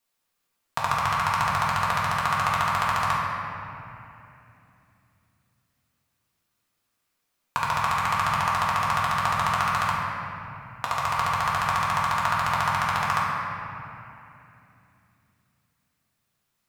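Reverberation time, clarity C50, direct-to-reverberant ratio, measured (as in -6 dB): 2.9 s, -1.0 dB, -5.5 dB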